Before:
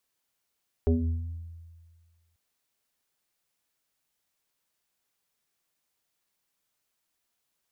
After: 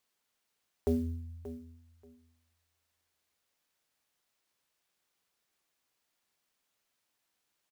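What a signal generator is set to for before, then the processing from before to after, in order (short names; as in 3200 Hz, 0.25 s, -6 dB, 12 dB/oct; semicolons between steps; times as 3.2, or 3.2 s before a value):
FM tone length 1.49 s, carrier 83.5 Hz, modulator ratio 1.95, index 2.2, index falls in 1.07 s exponential, decay 1.70 s, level -18 dB
HPF 200 Hz 6 dB/oct; feedback echo 0.582 s, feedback 18%, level -13.5 dB; clock jitter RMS 0.022 ms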